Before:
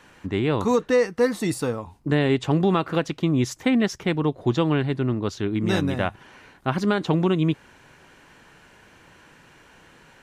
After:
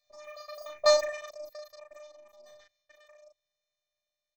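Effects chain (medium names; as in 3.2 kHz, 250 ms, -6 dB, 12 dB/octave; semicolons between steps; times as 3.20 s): Doppler pass-by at 2.08 s, 17 m/s, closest 1.3 m; bass shelf 120 Hz -4.5 dB; static phaser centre 820 Hz, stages 8; robot voice 256 Hz; on a send: delay 89 ms -3.5 dB; on the sum: speed mistake 33 rpm record played at 78 rpm; trim +6.5 dB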